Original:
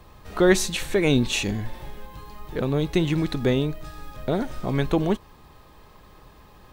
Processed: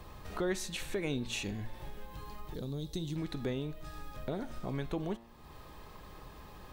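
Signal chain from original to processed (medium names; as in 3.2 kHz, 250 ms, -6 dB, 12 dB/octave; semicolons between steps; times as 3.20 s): de-hum 115.8 Hz, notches 37; compression 2:1, threshold -44 dBFS, peak gain reduction 17 dB; 2.54–3.16 s: FFT filter 160 Hz 0 dB, 2.5 kHz -14 dB, 3.7 kHz +4 dB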